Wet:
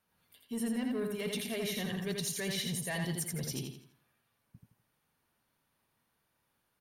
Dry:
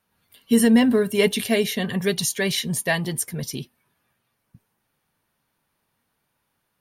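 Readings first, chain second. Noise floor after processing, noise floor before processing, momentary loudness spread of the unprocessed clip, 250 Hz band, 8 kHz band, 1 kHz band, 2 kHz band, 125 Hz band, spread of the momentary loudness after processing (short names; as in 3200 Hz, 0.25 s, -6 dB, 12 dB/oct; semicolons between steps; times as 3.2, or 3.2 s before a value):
-79 dBFS, -75 dBFS, 12 LU, -15.5 dB, -11.0 dB, -14.5 dB, -14.0 dB, -9.5 dB, 6 LU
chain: reverse; compressor 12:1, threshold -26 dBFS, peak gain reduction 15 dB; reverse; soft clip -22.5 dBFS, distortion -20 dB; feedback echo 83 ms, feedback 36%, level -4 dB; gain -6 dB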